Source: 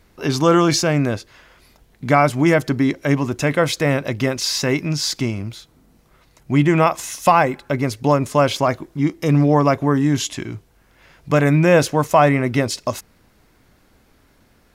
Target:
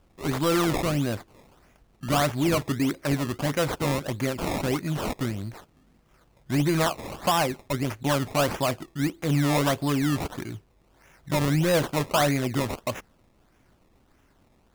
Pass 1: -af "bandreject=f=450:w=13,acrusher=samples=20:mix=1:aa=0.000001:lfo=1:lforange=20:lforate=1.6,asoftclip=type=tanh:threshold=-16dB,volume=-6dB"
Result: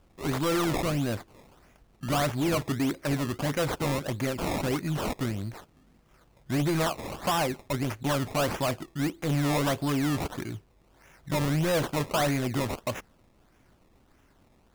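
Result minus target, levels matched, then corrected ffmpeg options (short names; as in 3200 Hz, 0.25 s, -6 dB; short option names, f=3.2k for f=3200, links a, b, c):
soft clip: distortion +6 dB
-af "bandreject=f=450:w=13,acrusher=samples=20:mix=1:aa=0.000001:lfo=1:lforange=20:lforate=1.6,asoftclip=type=tanh:threshold=-9.5dB,volume=-6dB"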